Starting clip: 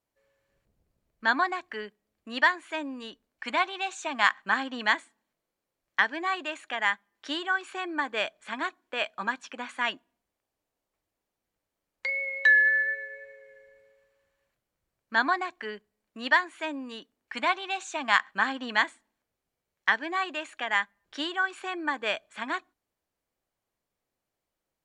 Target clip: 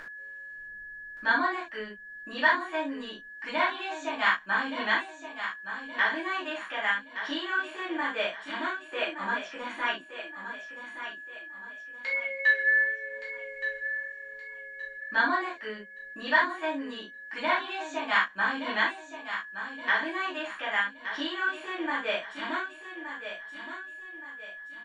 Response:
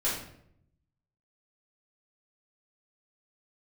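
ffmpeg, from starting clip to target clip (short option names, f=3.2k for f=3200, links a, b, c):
-filter_complex "[0:a]aeval=exprs='val(0)+0.00708*sin(2*PI*1700*n/s)':c=same,acompressor=mode=upward:threshold=-30dB:ratio=2.5,aecho=1:1:1171|2342|3513|4684:0.316|0.114|0.041|0.0148[a];[1:a]atrim=start_sample=2205,atrim=end_sample=3528[b];[a][b]afir=irnorm=-1:irlink=0,acrossover=split=5200[c][d];[d]acompressor=threshold=-55dB:ratio=4:attack=1:release=60[e];[c][e]amix=inputs=2:normalize=0,volume=-8.5dB"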